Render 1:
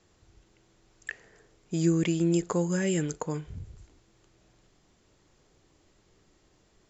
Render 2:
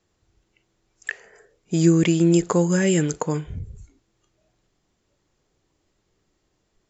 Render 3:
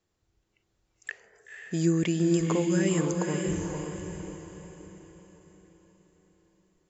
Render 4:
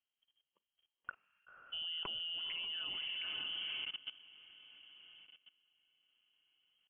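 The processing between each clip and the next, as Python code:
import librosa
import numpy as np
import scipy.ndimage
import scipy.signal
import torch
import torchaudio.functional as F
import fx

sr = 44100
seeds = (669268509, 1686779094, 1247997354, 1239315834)

y1 = fx.noise_reduce_blind(x, sr, reduce_db=14)
y1 = y1 * 10.0 ** (8.0 / 20.0)
y2 = fx.echo_diffused(y1, sr, ms=511, feedback_pct=44, wet_db=-3.5)
y2 = y2 * 10.0 ** (-8.0 / 20.0)
y3 = fx.freq_invert(y2, sr, carrier_hz=3200)
y3 = fx.level_steps(y3, sr, step_db=18)
y3 = y3 * 10.0 ** (-5.5 / 20.0)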